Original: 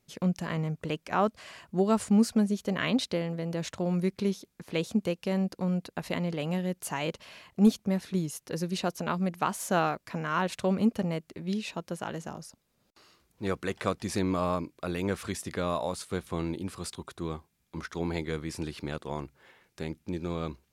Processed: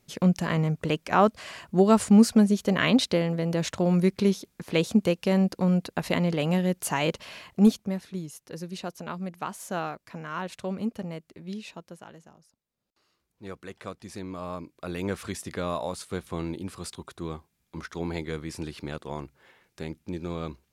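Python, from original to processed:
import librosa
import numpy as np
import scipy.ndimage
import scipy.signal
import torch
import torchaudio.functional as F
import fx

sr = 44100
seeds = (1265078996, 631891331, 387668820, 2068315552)

y = fx.gain(x, sr, db=fx.line((7.46, 6.0), (8.1, -5.0), (11.69, -5.0), (12.43, -16.5), (13.46, -9.0), (14.31, -9.0), (15.01, 0.0)))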